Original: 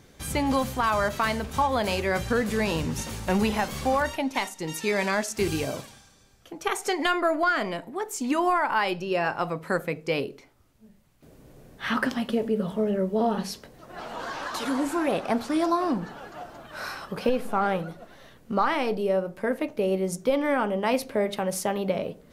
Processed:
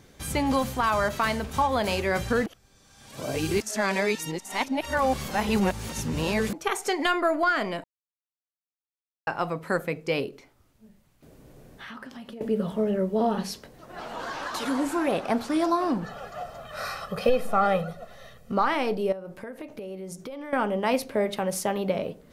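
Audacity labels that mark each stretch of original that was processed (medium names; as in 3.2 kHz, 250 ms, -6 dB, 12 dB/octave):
2.460000	6.530000	reverse
7.840000	9.270000	mute
10.290000	12.410000	compression, threshold -39 dBFS
16.040000	18.520000	comb 1.6 ms, depth 83%
19.120000	20.530000	compression 10:1, threshold -34 dBFS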